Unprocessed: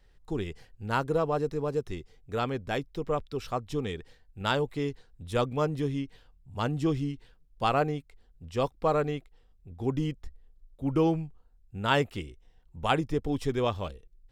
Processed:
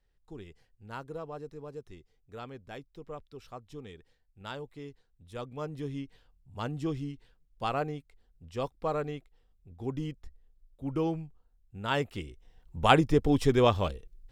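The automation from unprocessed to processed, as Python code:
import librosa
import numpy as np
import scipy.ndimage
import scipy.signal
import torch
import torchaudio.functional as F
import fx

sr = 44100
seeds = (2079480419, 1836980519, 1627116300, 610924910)

y = fx.gain(x, sr, db=fx.line((5.35, -13.0), (5.97, -5.5), (11.87, -5.5), (12.79, 5.0)))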